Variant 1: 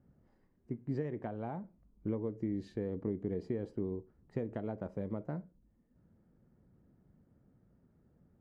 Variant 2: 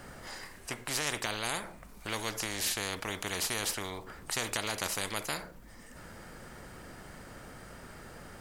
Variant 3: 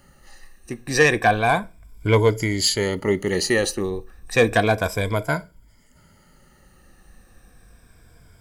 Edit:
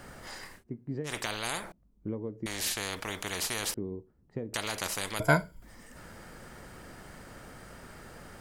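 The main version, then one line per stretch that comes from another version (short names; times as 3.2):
2
0.59–1.09 from 1, crossfade 0.10 s
1.72–2.46 from 1
3.74–4.54 from 1
5.2–5.62 from 3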